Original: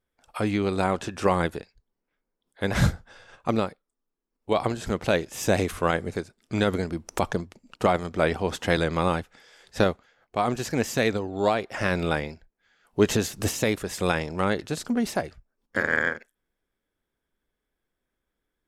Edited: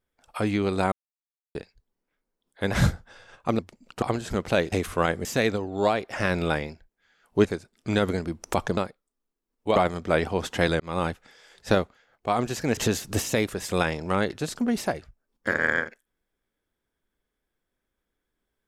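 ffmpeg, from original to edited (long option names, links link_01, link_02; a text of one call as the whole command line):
ffmpeg -i in.wav -filter_complex "[0:a]asplit=12[link_01][link_02][link_03][link_04][link_05][link_06][link_07][link_08][link_09][link_10][link_11][link_12];[link_01]atrim=end=0.92,asetpts=PTS-STARTPTS,afade=type=out:start_time=0.916:duration=0.004:curve=hsin[link_13];[link_02]atrim=start=0.92:end=1.55,asetpts=PTS-STARTPTS,volume=0[link_14];[link_03]atrim=start=1.55:end=3.592,asetpts=PTS-STARTPTS,afade=type=in:duration=0.004:curve=hsin[link_15];[link_04]atrim=start=7.418:end=7.852[link_16];[link_05]atrim=start=4.578:end=5.282[link_17];[link_06]atrim=start=5.568:end=6.102[link_18];[link_07]atrim=start=10.858:end=13.062[link_19];[link_08]atrim=start=6.098:end=7.422[link_20];[link_09]atrim=start=3.588:end=4.582[link_21];[link_10]atrim=start=7.848:end=8.89,asetpts=PTS-STARTPTS,afade=type=out:start_time=1.038:duration=0.004:curve=hsin[link_22];[link_11]atrim=start=8.89:end=10.862,asetpts=PTS-STARTPTS,afade=type=in:duration=0.27[link_23];[link_12]atrim=start=13.058[link_24];[link_13][link_14][link_15]concat=n=3:v=0:a=1[link_25];[link_25][link_16]acrossfade=duration=0.004:curve1=hsin:curve2=hsin[link_26];[link_26][link_17]acrossfade=duration=0.004:curve1=hsin:curve2=hsin[link_27];[link_27][link_18]acrossfade=duration=0.004:curve1=hsin:curve2=hsin[link_28];[link_28][link_19]acrossfade=duration=0.004:curve1=hsin:curve2=hsin[link_29];[link_29][link_20]acrossfade=duration=0.004:curve1=hsin:curve2=hsin[link_30];[link_30][link_21]acrossfade=duration=0.004:curve1=hsin:curve2=hsin[link_31];[link_22][link_23]concat=n=2:v=0:a=1[link_32];[link_31][link_32]acrossfade=duration=0.004:curve1=hsin:curve2=hsin[link_33];[link_33][link_24]acrossfade=duration=0.004:curve1=hsin:curve2=hsin" out.wav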